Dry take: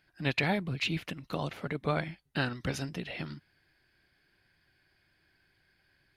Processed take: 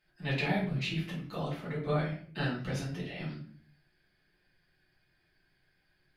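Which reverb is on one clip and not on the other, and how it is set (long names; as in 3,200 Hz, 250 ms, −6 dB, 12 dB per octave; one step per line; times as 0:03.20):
rectangular room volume 54 cubic metres, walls mixed, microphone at 1.5 metres
level −10.5 dB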